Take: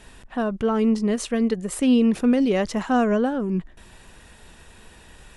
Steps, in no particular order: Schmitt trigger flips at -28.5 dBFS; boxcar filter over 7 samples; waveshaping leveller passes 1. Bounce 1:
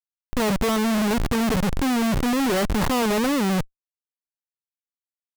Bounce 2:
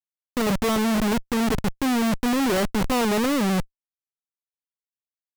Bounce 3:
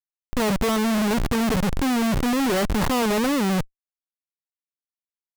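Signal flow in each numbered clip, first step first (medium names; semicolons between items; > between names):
waveshaping leveller > boxcar filter > Schmitt trigger; boxcar filter > Schmitt trigger > waveshaping leveller; boxcar filter > waveshaping leveller > Schmitt trigger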